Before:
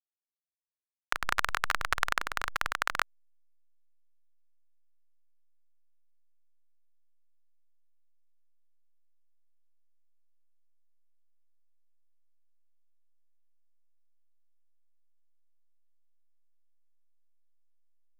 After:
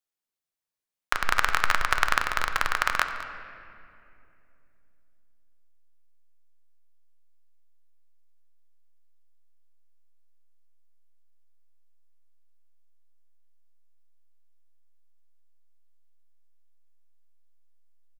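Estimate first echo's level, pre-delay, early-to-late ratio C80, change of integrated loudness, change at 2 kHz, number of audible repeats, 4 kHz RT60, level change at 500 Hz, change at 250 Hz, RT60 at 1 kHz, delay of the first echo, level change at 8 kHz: -17.0 dB, 5 ms, 8.5 dB, +5.5 dB, +6.0 dB, 1, 1.6 s, +6.0 dB, +6.0 dB, 2.3 s, 0.21 s, +5.0 dB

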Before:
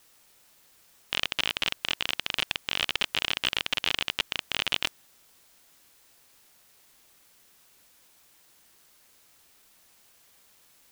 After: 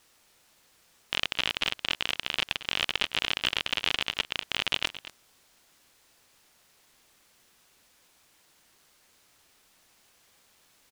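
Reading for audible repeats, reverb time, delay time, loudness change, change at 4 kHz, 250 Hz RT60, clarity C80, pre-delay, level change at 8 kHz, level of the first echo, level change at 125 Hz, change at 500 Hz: 1, none, 0.224 s, -0.5 dB, -0.5 dB, none, none, none, -2.0 dB, -15.0 dB, 0.0 dB, 0.0 dB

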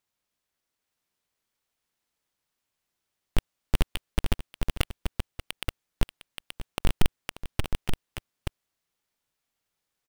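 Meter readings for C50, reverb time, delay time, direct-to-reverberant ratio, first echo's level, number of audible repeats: none, none, 0.585 s, none, -14.0 dB, 2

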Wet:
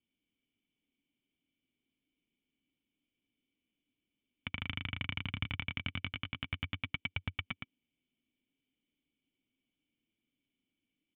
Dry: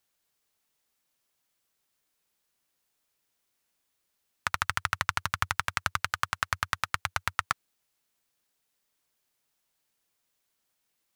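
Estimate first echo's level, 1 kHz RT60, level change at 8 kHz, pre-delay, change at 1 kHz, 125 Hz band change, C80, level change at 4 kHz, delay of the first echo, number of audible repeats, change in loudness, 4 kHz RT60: -4.5 dB, none, under -35 dB, none, -20.5 dB, 0.0 dB, none, -4.5 dB, 0.113 s, 1, -8.5 dB, none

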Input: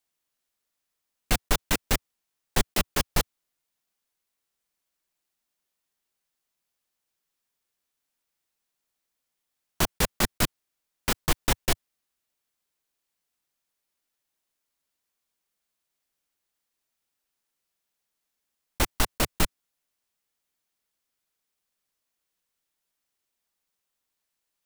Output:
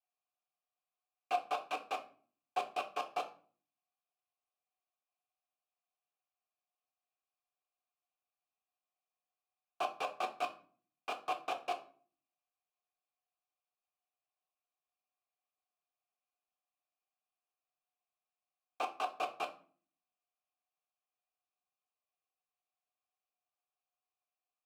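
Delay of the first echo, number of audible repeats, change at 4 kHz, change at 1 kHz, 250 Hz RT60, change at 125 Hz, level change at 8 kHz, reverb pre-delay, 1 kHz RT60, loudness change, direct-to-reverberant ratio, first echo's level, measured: none, none, -17.0 dB, -2.5 dB, 0.70 s, under -35 dB, -27.5 dB, 3 ms, 0.40 s, -12.0 dB, 4.0 dB, none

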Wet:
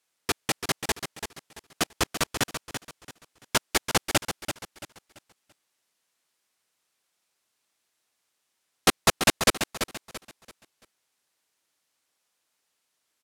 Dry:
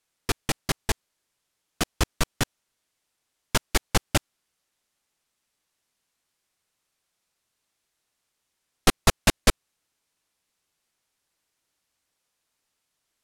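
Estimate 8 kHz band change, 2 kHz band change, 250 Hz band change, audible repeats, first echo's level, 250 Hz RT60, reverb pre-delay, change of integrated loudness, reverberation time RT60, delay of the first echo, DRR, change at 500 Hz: +1.5 dB, +1.5 dB, -1.5 dB, 3, -8.5 dB, none, none, -0.5 dB, none, 0.337 s, none, +0.5 dB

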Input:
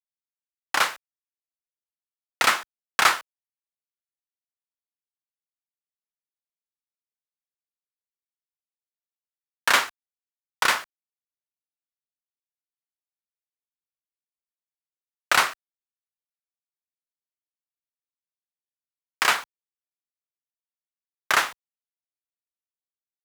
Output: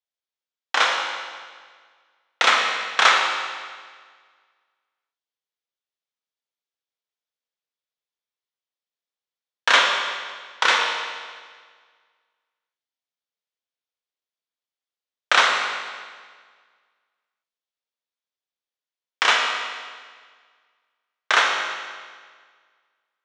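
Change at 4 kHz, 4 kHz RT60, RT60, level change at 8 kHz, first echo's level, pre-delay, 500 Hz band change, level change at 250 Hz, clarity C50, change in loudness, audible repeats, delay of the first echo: +6.5 dB, 1.6 s, 1.7 s, -1.0 dB, none, 19 ms, +5.5 dB, 0.0 dB, 2.5 dB, +2.5 dB, none, none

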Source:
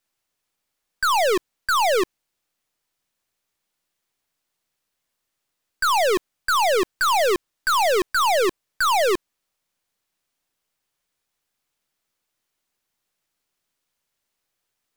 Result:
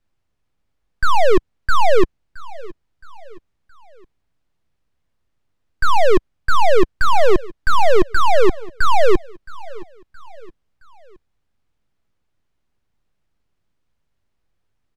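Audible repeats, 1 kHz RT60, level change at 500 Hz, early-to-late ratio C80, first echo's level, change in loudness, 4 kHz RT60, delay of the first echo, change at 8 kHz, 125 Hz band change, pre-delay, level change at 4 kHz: 3, none, +5.0 dB, none, -21.0 dB, +2.5 dB, none, 0.669 s, -9.0 dB, n/a, none, -4.0 dB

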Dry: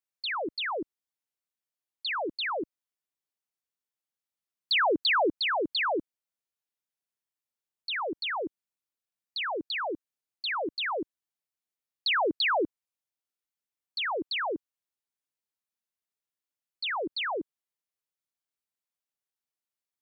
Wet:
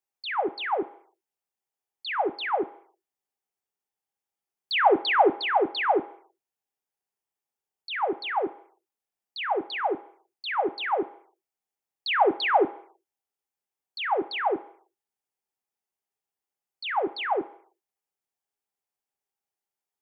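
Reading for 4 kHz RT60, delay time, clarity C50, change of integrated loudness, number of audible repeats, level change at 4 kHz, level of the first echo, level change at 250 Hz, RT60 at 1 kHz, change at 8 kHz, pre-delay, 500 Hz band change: 0.65 s, none, 17.0 dB, +3.0 dB, none, -2.5 dB, none, +3.0 dB, 0.65 s, n/a, 3 ms, +5.5 dB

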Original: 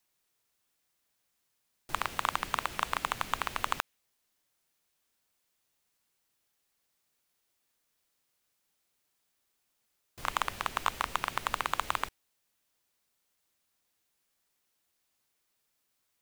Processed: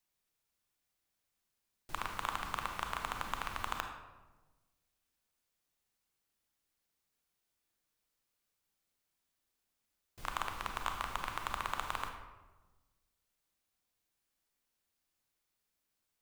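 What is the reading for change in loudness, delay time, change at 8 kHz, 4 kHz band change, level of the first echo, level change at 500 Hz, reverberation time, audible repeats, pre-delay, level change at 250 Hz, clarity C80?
-6.0 dB, none, -7.0 dB, -6.5 dB, none, -6.0 dB, 1.2 s, none, 28 ms, -4.0 dB, 8.0 dB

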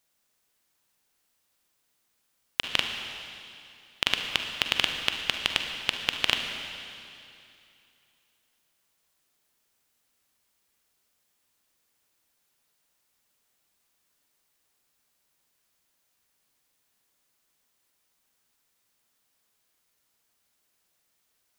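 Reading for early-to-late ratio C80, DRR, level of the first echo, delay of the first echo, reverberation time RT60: 6.0 dB, 4.0 dB, none, none, 2.7 s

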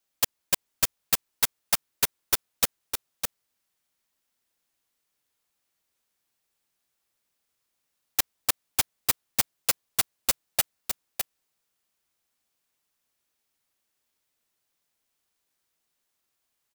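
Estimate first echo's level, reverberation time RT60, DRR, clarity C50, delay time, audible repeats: -6.0 dB, none, none, none, 0.608 s, 1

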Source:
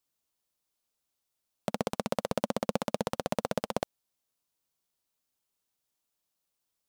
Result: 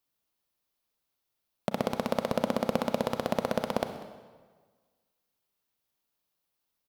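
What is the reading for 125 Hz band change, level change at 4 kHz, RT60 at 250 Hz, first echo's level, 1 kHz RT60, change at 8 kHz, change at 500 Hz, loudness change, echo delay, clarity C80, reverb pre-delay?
+1.5 dB, +1.0 dB, 1.5 s, -19.5 dB, 1.5 s, -3.0 dB, +3.0 dB, +2.5 dB, 0.194 s, 10.0 dB, 31 ms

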